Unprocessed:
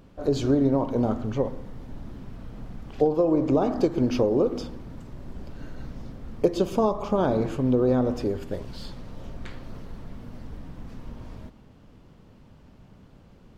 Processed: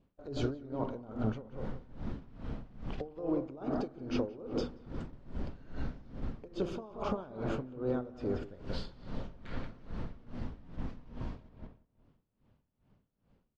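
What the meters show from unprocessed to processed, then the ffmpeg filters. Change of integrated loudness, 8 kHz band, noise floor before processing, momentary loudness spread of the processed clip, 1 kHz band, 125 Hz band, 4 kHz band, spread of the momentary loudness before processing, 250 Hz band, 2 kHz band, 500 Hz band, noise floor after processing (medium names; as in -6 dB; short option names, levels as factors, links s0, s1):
-15.0 dB, no reading, -52 dBFS, 10 LU, -12.0 dB, -9.5 dB, -7.5 dB, 20 LU, -12.5 dB, -6.5 dB, -14.0 dB, -79 dBFS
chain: -filter_complex "[0:a]lowpass=4700,agate=range=0.112:threshold=0.0112:ratio=16:detection=peak,adynamicequalizer=threshold=0.00126:dfrequency=1400:dqfactor=7.3:tfrequency=1400:tqfactor=7.3:attack=5:release=100:ratio=0.375:range=4:mode=boostabove:tftype=bell,alimiter=limit=0.158:level=0:latency=1:release=228,acompressor=threshold=0.0251:ratio=4,asplit=2[s0][s1];[s1]adelay=180,lowpass=f=2800:p=1,volume=0.447,asplit=2[s2][s3];[s3]adelay=180,lowpass=f=2800:p=1,volume=0.4,asplit=2[s4][s5];[s5]adelay=180,lowpass=f=2800:p=1,volume=0.4,asplit=2[s6][s7];[s7]adelay=180,lowpass=f=2800:p=1,volume=0.4,asplit=2[s8][s9];[s9]adelay=180,lowpass=f=2800:p=1,volume=0.4[s10];[s0][s2][s4][s6][s8][s10]amix=inputs=6:normalize=0,aeval=exprs='val(0)*pow(10,-19*(0.5-0.5*cos(2*PI*2.4*n/s))/20)':c=same,volume=1.41"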